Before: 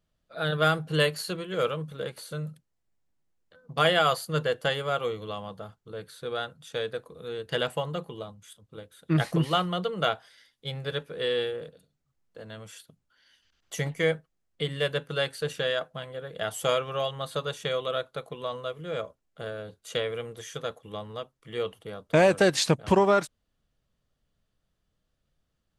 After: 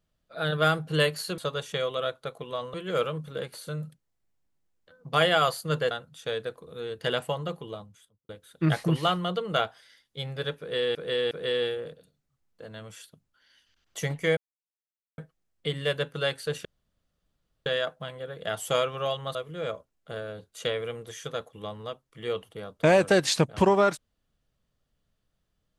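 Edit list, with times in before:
0:04.55–0:06.39: remove
0:08.28–0:08.77: fade out and dull
0:11.07–0:11.43: repeat, 3 plays
0:14.13: splice in silence 0.81 s
0:15.60: splice in room tone 1.01 s
0:17.29–0:18.65: move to 0:01.38

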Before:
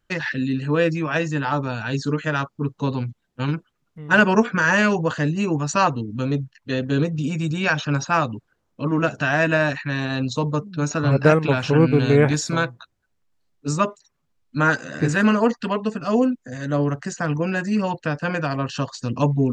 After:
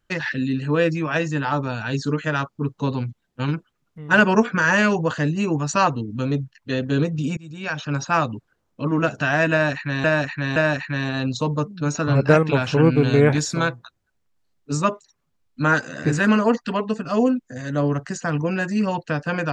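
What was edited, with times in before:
0:07.37–0:08.15: fade in, from −24 dB
0:09.52–0:10.04: repeat, 3 plays

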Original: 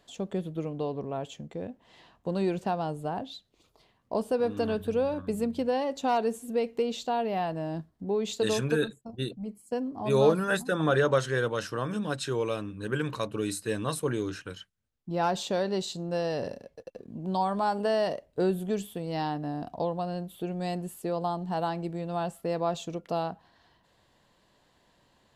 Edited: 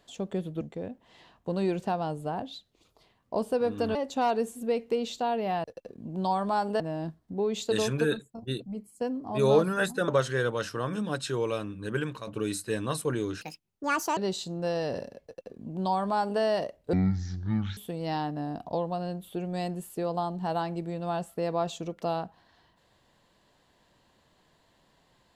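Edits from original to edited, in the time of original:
0:00.61–0:01.40: remove
0:04.74–0:05.82: remove
0:10.79–0:11.06: remove
0:12.94–0:13.25: fade out, to −10.5 dB
0:14.39–0:15.66: play speed 167%
0:16.74–0:17.90: duplicate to 0:07.51
0:18.42–0:18.84: play speed 50%

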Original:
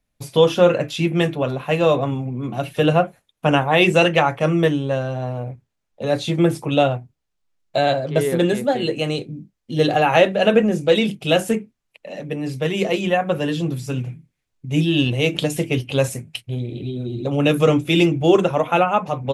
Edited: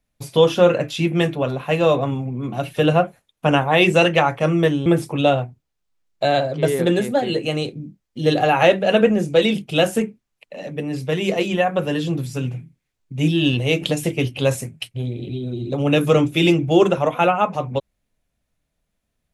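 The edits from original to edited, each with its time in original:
0:04.86–0:06.39: remove

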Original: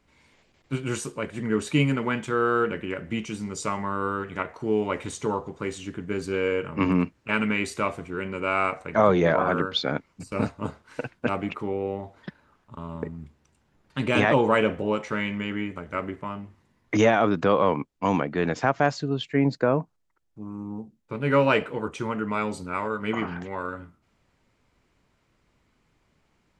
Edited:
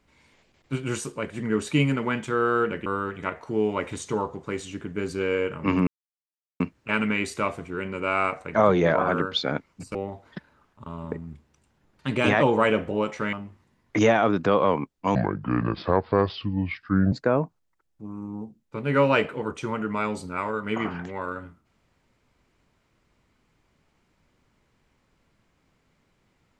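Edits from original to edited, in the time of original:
0:02.86–0:03.99: remove
0:07.00: splice in silence 0.73 s
0:10.35–0:11.86: remove
0:15.24–0:16.31: remove
0:18.13–0:19.49: play speed 69%

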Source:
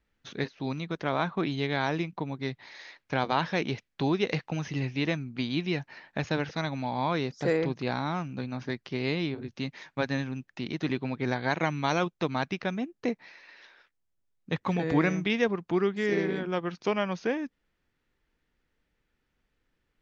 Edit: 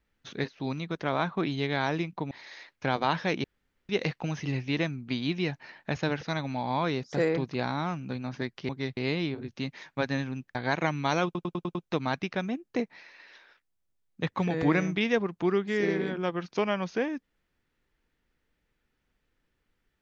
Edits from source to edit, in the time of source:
0:02.31–0:02.59: move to 0:08.97
0:03.72–0:04.17: fill with room tone
0:10.55–0:11.34: remove
0:12.04: stutter 0.10 s, 6 plays

